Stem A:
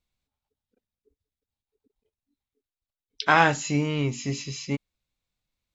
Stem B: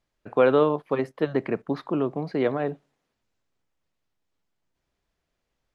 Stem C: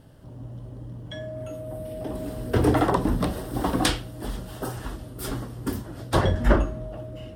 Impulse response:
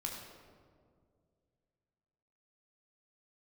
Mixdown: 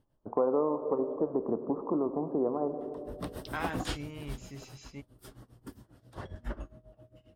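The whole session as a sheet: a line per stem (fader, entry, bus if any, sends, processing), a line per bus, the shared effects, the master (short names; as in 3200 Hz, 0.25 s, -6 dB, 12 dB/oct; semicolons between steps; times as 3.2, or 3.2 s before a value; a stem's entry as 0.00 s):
-17.0 dB, 0.25 s, no send, dry
-1.0 dB, 0.00 s, send -6 dB, steep low-pass 1100 Hz 48 dB/oct; bell 140 Hz -13.5 dB 0.49 oct
2.73 s -18.5 dB -> 3.22 s -6 dB -> 4.38 s -6 dB -> 4.73 s -16.5 dB, 0.00 s, no send, tremolo 7.4 Hz, depth 89%; auto duck -22 dB, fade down 0.60 s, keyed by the second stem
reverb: on, RT60 2.1 s, pre-delay 13 ms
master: compressor 2.5:1, threshold -28 dBFS, peak gain reduction 9.5 dB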